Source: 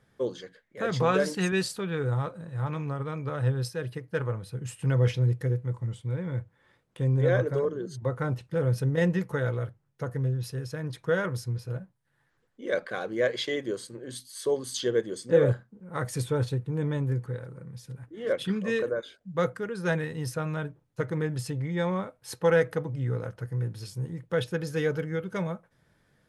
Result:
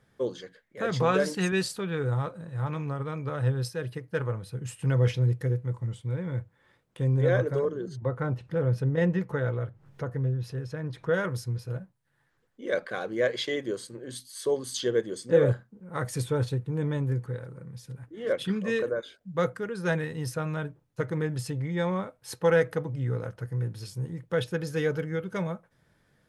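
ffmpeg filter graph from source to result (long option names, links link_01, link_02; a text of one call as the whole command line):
ffmpeg -i in.wav -filter_complex "[0:a]asettb=1/sr,asplit=3[link_01][link_02][link_03];[link_01]atrim=end=7.884[link_04];[link_02]atrim=start=7.88:end=11.14,asetpts=PTS-STARTPTS,afade=type=in:duration=0.004:curve=qsin,afade=type=out:start_time=3.256:duration=0.004:curve=qsin,lowpass=frequency=2500:poles=1,acompressor=mode=upward:threshold=-35dB:ratio=2.5:attack=3.2:release=140:knee=2.83:detection=peak[link_05];[link_03]atrim=start=11.136[link_06];[link_04][link_05]acrossfade=duration=0.004:curve1=hsin:curve2=qsin[link_07];[link_07][link_06]acrossfade=duration=0.004:curve1=qsin:curve2=hsin" out.wav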